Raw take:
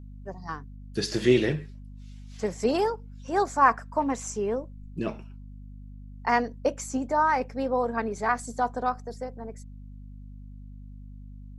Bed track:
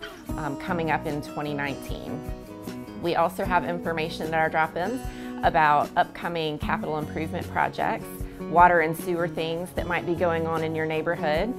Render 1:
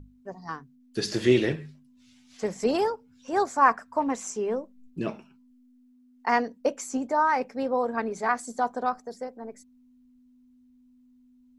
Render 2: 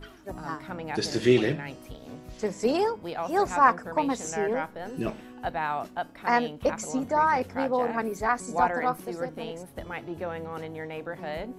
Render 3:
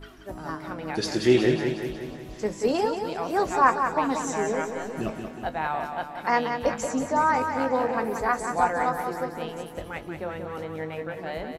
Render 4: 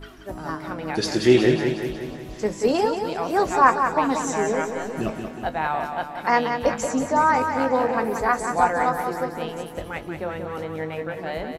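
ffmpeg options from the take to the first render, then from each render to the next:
-af "bandreject=f=50:t=h:w=6,bandreject=f=100:t=h:w=6,bandreject=f=150:t=h:w=6,bandreject=f=200:t=h:w=6"
-filter_complex "[1:a]volume=-10dB[a];[0:a][a]amix=inputs=2:normalize=0"
-filter_complex "[0:a]asplit=2[a][b];[b]adelay=19,volume=-11.5dB[c];[a][c]amix=inputs=2:normalize=0,aecho=1:1:182|364|546|728|910|1092|1274:0.447|0.255|0.145|0.0827|0.0472|0.0269|0.0153"
-af "volume=3.5dB"

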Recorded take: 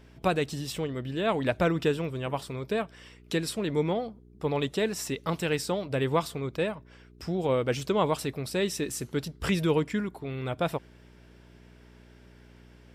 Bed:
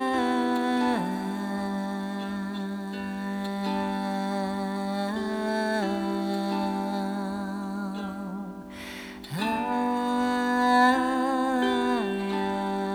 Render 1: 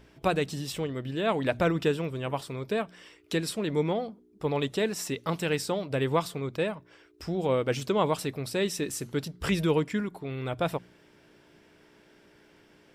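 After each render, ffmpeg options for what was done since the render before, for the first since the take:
-af "bandreject=f=60:t=h:w=4,bandreject=f=120:t=h:w=4,bandreject=f=180:t=h:w=4,bandreject=f=240:t=h:w=4"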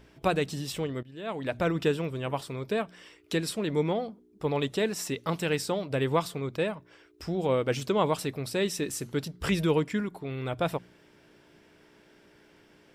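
-filter_complex "[0:a]asplit=2[a][b];[a]atrim=end=1.03,asetpts=PTS-STARTPTS,afade=t=out:st=1.026:d=0.004:c=hsin:silence=0.11885[c];[b]atrim=start=1.03,asetpts=PTS-STARTPTS,afade=t=in:d=0.83:silence=0.11885[d];[c][d]concat=n=2:v=0:a=1"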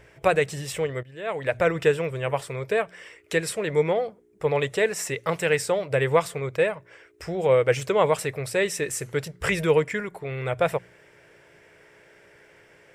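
-af "equalizer=f=125:t=o:w=1:g=6,equalizer=f=250:t=o:w=1:g=-11,equalizer=f=500:t=o:w=1:g=10,equalizer=f=2k:t=o:w=1:g=11,equalizer=f=4k:t=o:w=1:g=-5,equalizer=f=8k:t=o:w=1:g=7"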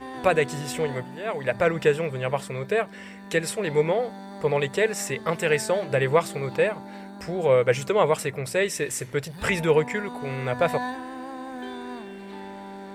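-filter_complex "[1:a]volume=-11dB[a];[0:a][a]amix=inputs=2:normalize=0"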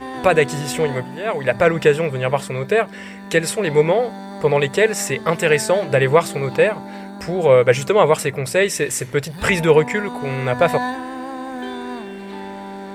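-af "volume=7dB,alimiter=limit=-2dB:level=0:latency=1"

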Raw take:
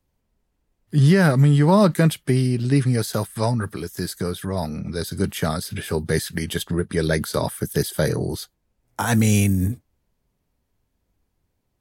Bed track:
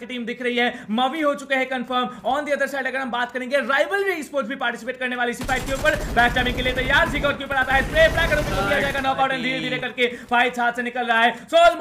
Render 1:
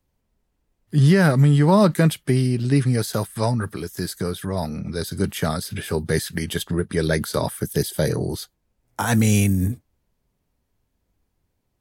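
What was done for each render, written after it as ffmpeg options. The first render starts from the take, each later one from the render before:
-filter_complex "[0:a]asettb=1/sr,asplit=3[a][b][c];[a]atrim=end=7.674[d];[b]atrim=start=7.67:end=8.11,asetpts=PTS-STARTPTS,afade=t=in:d=0.004:c=qsin,afade=t=out:st=0.436:d=0.004:c=qsin,equalizer=f=1.3k:t=o:w=0.77:g=-6[e];[c]atrim=start=8.106[f];[d][e]acrossfade=d=0.004:c1=hsin:c2=qsin[g];[g][f]acrossfade=d=0.004:c1=qsin:c2=hsin"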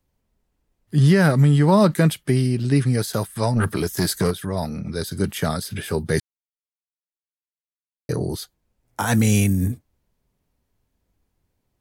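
-filter_complex "[0:a]asplit=3[a][b][c];[a]afade=t=out:st=3.55:d=0.02[d];[b]aeval=exprs='0.2*sin(PI/2*1.58*val(0)/0.2)':c=same,afade=t=in:st=3.55:d=0.02,afade=t=out:st=4.3:d=0.02[e];[c]afade=t=in:st=4.3:d=0.02[f];[d][e][f]amix=inputs=3:normalize=0,asplit=3[g][h][i];[g]atrim=end=6.2,asetpts=PTS-STARTPTS,afade=t=out:st=6.196:d=0.004:c=hsin[j];[h]atrim=start=6.2:end=8.09,asetpts=PTS-STARTPTS,volume=0[k];[i]atrim=start=8.09,asetpts=PTS-STARTPTS,afade=t=in:d=0.004:c=hsin[l];[j][k][l]concat=n=3:v=0:a=1"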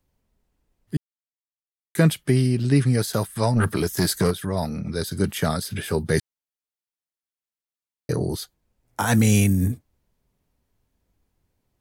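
-filter_complex "[0:a]asplit=3[a][b][c];[a]atrim=end=0.97,asetpts=PTS-STARTPTS,afade=t=out:st=0.966:d=0.004:c=hsin[d];[b]atrim=start=0.97:end=1.95,asetpts=PTS-STARTPTS,volume=0[e];[c]atrim=start=1.95,asetpts=PTS-STARTPTS,afade=t=in:d=0.004:c=hsin[f];[d][e][f]concat=n=3:v=0:a=1"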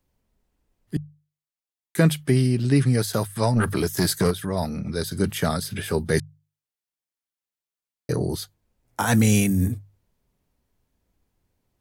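-af "bandreject=f=50:t=h:w=6,bandreject=f=100:t=h:w=6,bandreject=f=150:t=h:w=6"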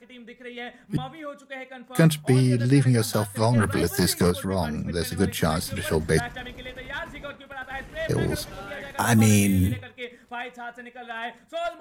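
-filter_complex "[1:a]volume=-16dB[a];[0:a][a]amix=inputs=2:normalize=0"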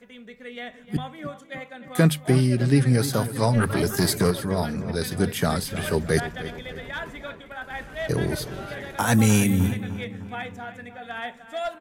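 -filter_complex "[0:a]asplit=2[a][b];[b]adelay=304,lowpass=f=3k:p=1,volume=-12.5dB,asplit=2[c][d];[d]adelay=304,lowpass=f=3k:p=1,volume=0.53,asplit=2[e][f];[f]adelay=304,lowpass=f=3k:p=1,volume=0.53,asplit=2[g][h];[h]adelay=304,lowpass=f=3k:p=1,volume=0.53,asplit=2[i][j];[j]adelay=304,lowpass=f=3k:p=1,volume=0.53[k];[a][c][e][g][i][k]amix=inputs=6:normalize=0"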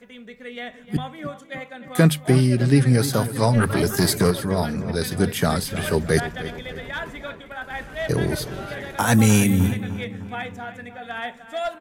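-af "volume=2.5dB"

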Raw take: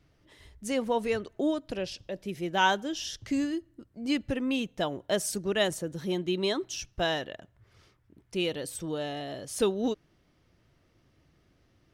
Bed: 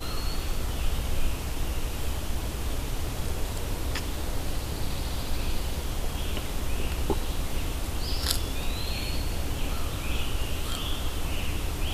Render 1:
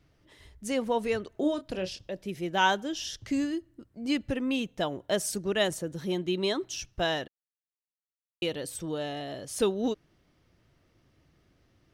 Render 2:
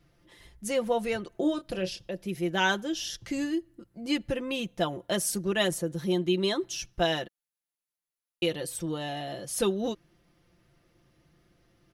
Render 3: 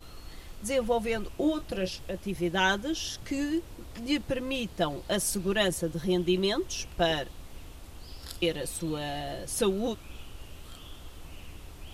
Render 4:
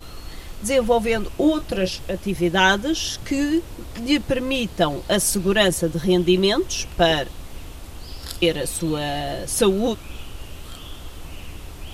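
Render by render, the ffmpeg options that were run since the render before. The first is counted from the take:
-filter_complex "[0:a]asettb=1/sr,asplit=3[a][b][c];[a]atrim=end=1.314[d];[b]atrim=start=1.31:end=1.99,asetpts=PTS-STARTPTS,afade=t=in:d=0.004:c=qsin,afade=t=out:st=0.676:d=0.004:c=qsin,asplit=2[e][f];[f]adelay=27,volume=-9.5dB[g];[e][g]amix=inputs=2:normalize=0,atrim=end_sample=29988[h];[c]atrim=start=1.986[i];[d][h]acrossfade=d=0.004:c1=hsin:c2=qsin[j];[j][i]acrossfade=d=0.004:c1=qsin:c2=hsin,asplit=3[k][l][m];[k]atrim=end=7.28,asetpts=PTS-STARTPTS,afade=t=out:st=7.276:d=0.004:c=hsin[n];[l]atrim=start=7.28:end=8.42,asetpts=PTS-STARTPTS,volume=0[o];[m]atrim=start=8.42,asetpts=PTS-STARTPTS,afade=t=in:d=0.004:c=hsin[p];[n][o][p]concat=n=3:v=0:a=1"
-af "equalizer=f=11k:w=7.2:g=10.5,aecho=1:1:5.8:0.59"
-filter_complex "[1:a]volume=-15.5dB[a];[0:a][a]amix=inputs=2:normalize=0"
-af "volume=9dB"

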